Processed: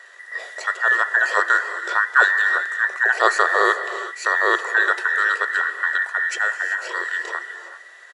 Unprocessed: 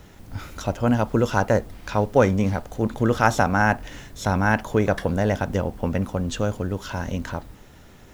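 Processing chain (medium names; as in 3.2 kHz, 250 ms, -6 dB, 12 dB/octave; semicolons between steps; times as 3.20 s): every band turned upside down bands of 2 kHz; FFT band-pass 340–11000 Hz; speakerphone echo 160 ms, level -30 dB; gated-style reverb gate 410 ms rising, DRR 9 dB; trim +1.5 dB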